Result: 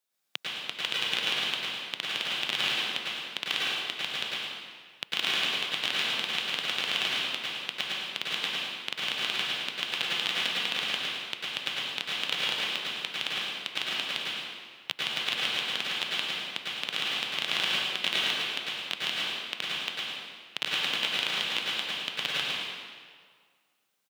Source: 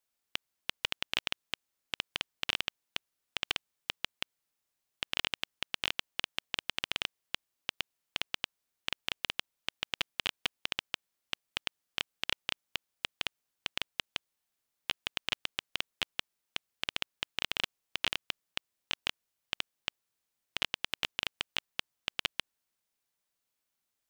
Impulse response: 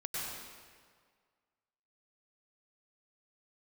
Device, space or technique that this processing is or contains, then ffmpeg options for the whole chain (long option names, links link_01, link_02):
PA in a hall: -filter_complex "[0:a]highpass=frequency=140:width=0.5412,highpass=frequency=140:width=1.3066,equalizer=frequency=3700:width_type=o:width=0.3:gain=4,aecho=1:1:110:0.447[link_01];[1:a]atrim=start_sample=2205[link_02];[link_01][link_02]afir=irnorm=-1:irlink=0,volume=3.5dB"